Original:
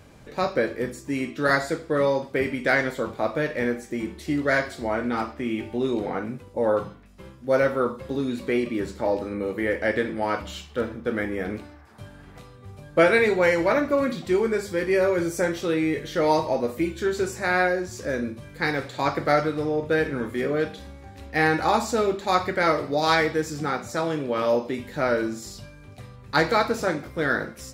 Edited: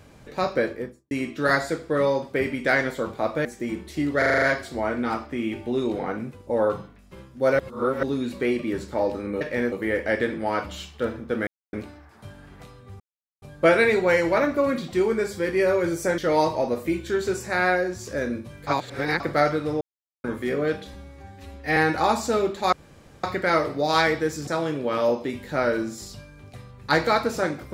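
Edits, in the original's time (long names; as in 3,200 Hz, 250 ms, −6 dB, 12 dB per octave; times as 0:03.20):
0:00.62–0:01.11: fade out and dull
0:03.45–0:03.76: move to 0:09.48
0:04.49: stutter 0.04 s, 7 plays
0:07.66–0:08.10: reverse
0:11.23–0:11.49: silence
0:12.76: splice in silence 0.42 s
0:15.52–0:16.10: remove
0:18.59–0:19.12: reverse
0:19.73–0:20.16: silence
0:20.86–0:21.41: time-stretch 1.5×
0:22.37: splice in room tone 0.51 s
0:23.61–0:23.92: remove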